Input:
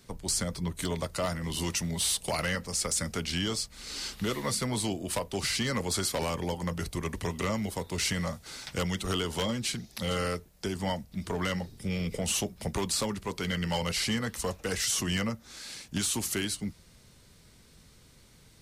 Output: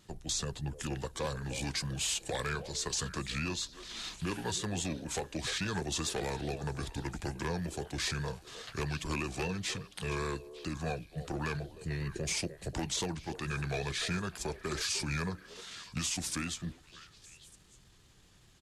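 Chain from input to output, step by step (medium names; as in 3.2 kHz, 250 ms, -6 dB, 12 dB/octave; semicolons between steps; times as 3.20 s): pitch shift -3.5 st; vibrato 5 Hz 48 cents; repeats whose band climbs or falls 301 ms, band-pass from 490 Hz, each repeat 1.4 oct, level -9.5 dB; trim -4.5 dB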